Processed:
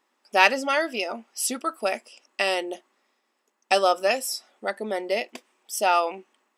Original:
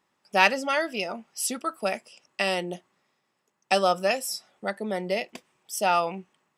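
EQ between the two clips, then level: brick-wall FIR high-pass 210 Hz; +2.0 dB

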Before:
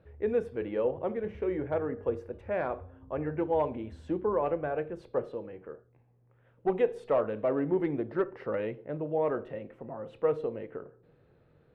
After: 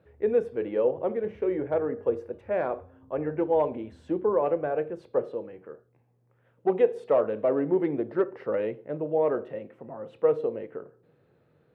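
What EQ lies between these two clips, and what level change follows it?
HPF 110 Hz 12 dB/oct; dynamic EQ 480 Hz, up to +5 dB, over -39 dBFS, Q 0.92; 0.0 dB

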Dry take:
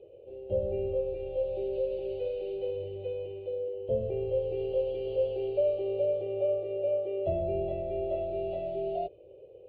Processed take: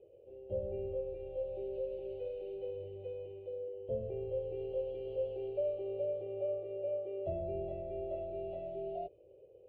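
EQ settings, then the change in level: air absorption 250 m; -7.0 dB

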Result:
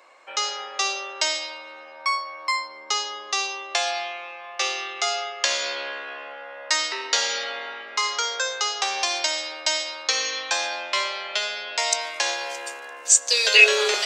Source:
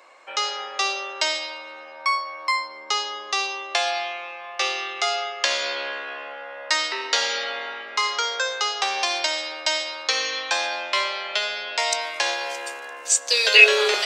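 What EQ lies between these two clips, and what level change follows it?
dynamic EQ 6800 Hz, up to +7 dB, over -41 dBFS, Q 1.7; -2.0 dB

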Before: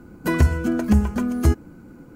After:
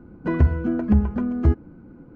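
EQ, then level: tape spacing loss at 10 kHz 42 dB; 0.0 dB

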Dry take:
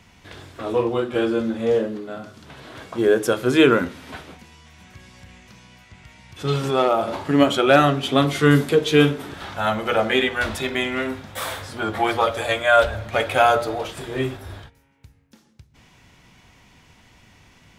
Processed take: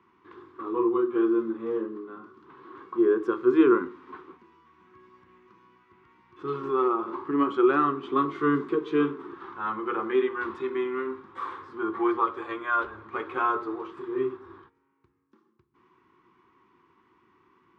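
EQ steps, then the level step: double band-pass 630 Hz, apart 1.6 oct; air absorption 63 m; +3.5 dB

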